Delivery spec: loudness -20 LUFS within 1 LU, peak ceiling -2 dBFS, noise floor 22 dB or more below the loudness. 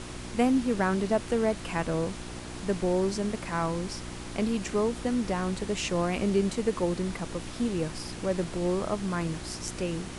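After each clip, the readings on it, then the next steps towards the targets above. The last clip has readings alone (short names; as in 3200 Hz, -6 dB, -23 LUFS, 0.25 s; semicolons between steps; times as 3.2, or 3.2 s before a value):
hum 60 Hz; harmonics up to 360 Hz; hum level -42 dBFS; noise floor -40 dBFS; noise floor target -52 dBFS; loudness -29.5 LUFS; peak -11.5 dBFS; loudness target -20.0 LUFS
-> de-hum 60 Hz, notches 6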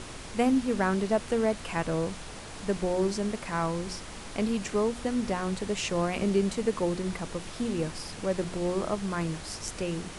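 hum none; noise floor -42 dBFS; noise floor target -52 dBFS
-> noise print and reduce 10 dB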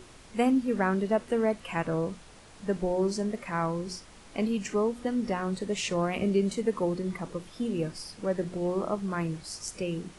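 noise floor -52 dBFS; loudness -30.0 LUFS; peak -13.0 dBFS; loudness target -20.0 LUFS
-> gain +10 dB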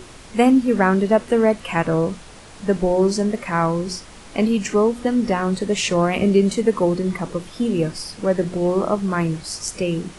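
loudness -20.0 LUFS; peak -3.0 dBFS; noise floor -42 dBFS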